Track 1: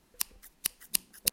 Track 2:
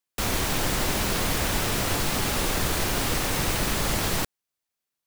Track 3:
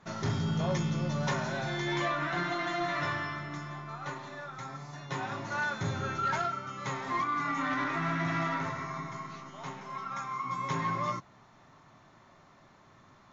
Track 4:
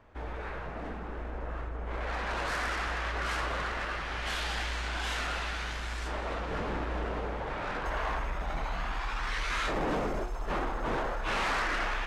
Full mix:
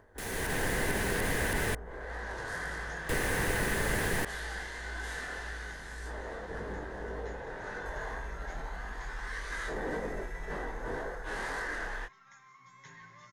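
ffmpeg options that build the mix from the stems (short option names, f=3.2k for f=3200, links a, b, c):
-filter_complex "[0:a]adelay=250,volume=-11dB[a];[1:a]dynaudnorm=f=260:g=3:m=11.5dB,volume=-15.5dB,asplit=3[b][c][d];[b]atrim=end=1.75,asetpts=PTS-STARTPTS,afade=t=out:st=1.746:d=0.004:c=hsin[e];[c]atrim=start=1.75:end=3.09,asetpts=PTS-STARTPTS,volume=0[f];[d]atrim=start=3.09,asetpts=PTS-STARTPTS,afade=t=in:d=0.004:c=hsin[g];[e][f][g]concat=n=3:v=0:a=1[h];[2:a]equalizer=f=360:w=0.36:g=-14,adelay=2150,volume=-14dB[i];[3:a]flanger=delay=19:depth=5.3:speed=1.8,equalizer=f=2.5k:t=o:w=0.81:g=-10.5,volume=-3.5dB[j];[a][h][i][j]amix=inputs=4:normalize=0,acrossover=split=2700[k][l];[l]acompressor=threshold=-41dB:ratio=4:attack=1:release=60[m];[k][m]amix=inputs=2:normalize=0,superequalizer=7b=1.78:10b=0.708:11b=2.51:15b=1.41:16b=2.24,acompressor=mode=upward:threshold=-55dB:ratio=2.5"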